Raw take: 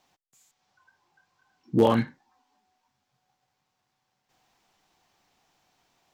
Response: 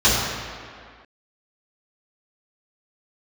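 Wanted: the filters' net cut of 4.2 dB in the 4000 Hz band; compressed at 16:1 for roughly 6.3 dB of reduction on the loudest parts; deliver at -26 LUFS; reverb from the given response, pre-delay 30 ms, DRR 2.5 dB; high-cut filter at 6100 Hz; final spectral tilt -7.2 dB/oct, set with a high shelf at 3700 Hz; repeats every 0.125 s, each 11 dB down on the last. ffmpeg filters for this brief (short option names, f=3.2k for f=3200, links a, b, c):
-filter_complex "[0:a]lowpass=6.1k,highshelf=f=3.7k:g=4.5,equalizer=f=4k:t=o:g=-8.5,acompressor=threshold=-20dB:ratio=16,aecho=1:1:125|250|375:0.282|0.0789|0.0221,asplit=2[a][b];[1:a]atrim=start_sample=2205,adelay=30[c];[b][c]afir=irnorm=-1:irlink=0,volume=-25dB[d];[a][d]amix=inputs=2:normalize=0,volume=1dB"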